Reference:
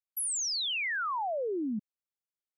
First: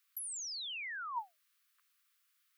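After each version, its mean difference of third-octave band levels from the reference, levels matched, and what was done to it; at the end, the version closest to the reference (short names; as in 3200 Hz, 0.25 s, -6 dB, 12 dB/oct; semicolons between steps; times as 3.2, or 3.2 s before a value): 6.5 dB: steep high-pass 1100 Hz 96 dB/oct; bell 7000 Hz -5 dB 1.3 oct; limiter -40 dBFS, peak gain reduction 10.5 dB; negative-ratio compressor -53 dBFS, ratio -1; gain +11.5 dB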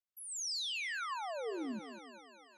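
12.5 dB: LPF 6500 Hz 12 dB/oct; on a send: thinning echo 0.195 s, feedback 73%, high-pass 360 Hz, level -11 dB; on the sum: limiter -29 dBFS, peak gain reduction 4.5 dB; flange 1 Hz, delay 2.4 ms, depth 9 ms, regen +79%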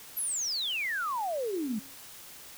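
24.5 dB: de-hum 136.8 Hz, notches 3; requantised 8-bit, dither triangular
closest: first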